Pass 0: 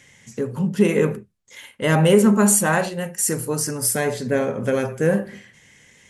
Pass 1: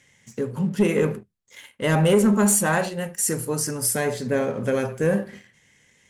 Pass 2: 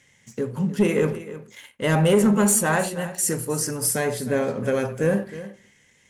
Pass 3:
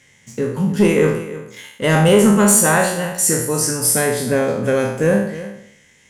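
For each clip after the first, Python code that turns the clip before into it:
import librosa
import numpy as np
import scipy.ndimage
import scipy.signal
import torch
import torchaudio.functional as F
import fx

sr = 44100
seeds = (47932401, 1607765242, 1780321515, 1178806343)

y1 = fx.leveller(x, sr, passes=1)
y1 = y1 * 10.0 ** (-5.5 / 20.0)
y2 = y1 + 10.0 ** (-15.0 / 20.0) * np.pad(y1, (int(313 * sr / 1000.0), 0))[:len(y1)]
y3 = fx.spec_trails(y2, sr, decay_s=0.67)
y3 = y3 * 10.0 ** (4.5 / 20.0)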